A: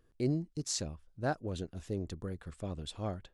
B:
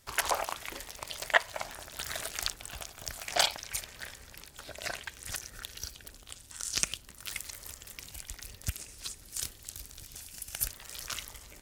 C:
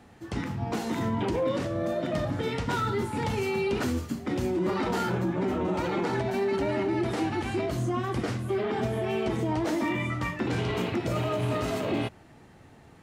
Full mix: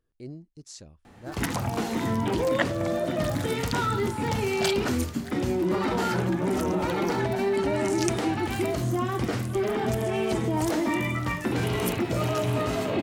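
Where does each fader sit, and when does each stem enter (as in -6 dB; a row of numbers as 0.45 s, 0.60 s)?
-9.0 dB, -3.5 dB, +2.0 dB; 0.00 s, 1.25 s, 1.05 s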